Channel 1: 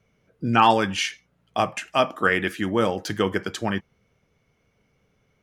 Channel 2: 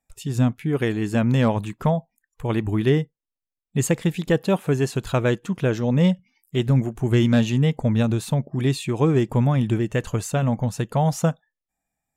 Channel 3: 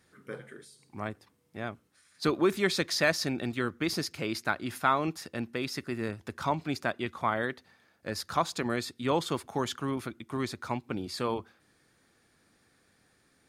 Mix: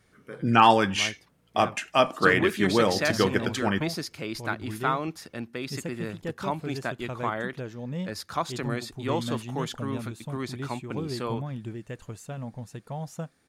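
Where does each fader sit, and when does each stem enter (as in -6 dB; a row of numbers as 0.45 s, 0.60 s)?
-0.5 dB, -15.0 dB, -1.0 dB; 0.00 s, 1.95 s, 0.00 s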